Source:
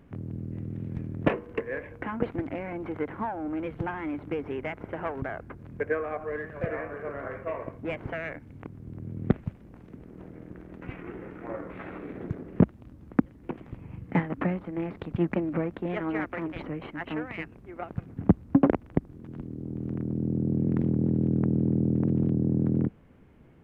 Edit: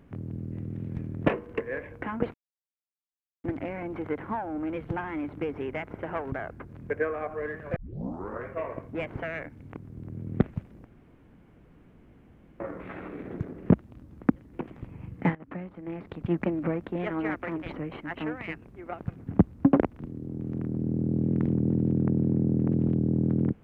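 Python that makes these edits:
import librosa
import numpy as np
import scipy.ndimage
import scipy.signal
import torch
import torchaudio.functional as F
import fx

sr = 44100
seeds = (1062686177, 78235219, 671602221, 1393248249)

y = fx.edit(x, sr, fx.insert_silence(at_s=2.34, length_s=1.1),
    fx.tape_start(start_s=6.66, length_s=0.69),
    fx.room_tone_fill(start_s=9.75, length_s=1.75),
    fx.fade_in_from(start_s=14.25, length_s=1.12, floor_db=-16.5),
    fx.cut(start_s=18.89, length_s=0.46), tone=tone)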